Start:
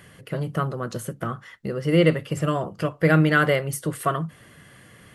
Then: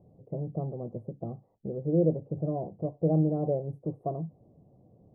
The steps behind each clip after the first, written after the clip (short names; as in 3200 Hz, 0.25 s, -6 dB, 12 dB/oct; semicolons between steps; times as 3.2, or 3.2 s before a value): elliptic low-pass 770 Hz, stop band 50 dB; gain -6 dB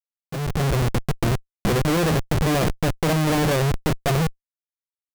Schmitt trigger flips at -37.5 dBFS; AGC gain up to 12 dB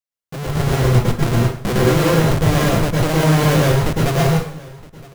echo 0.967 s -21.5 dB; plate-style reverb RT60 0.52 s, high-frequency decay 0.8×, pre-delay 95 ms, DRR -3.5 dB